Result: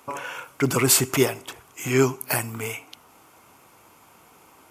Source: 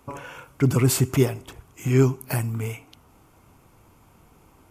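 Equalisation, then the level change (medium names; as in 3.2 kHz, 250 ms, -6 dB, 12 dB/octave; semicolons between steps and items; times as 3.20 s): high-pass 710 Hz 6 dB/octave; +7.5 dB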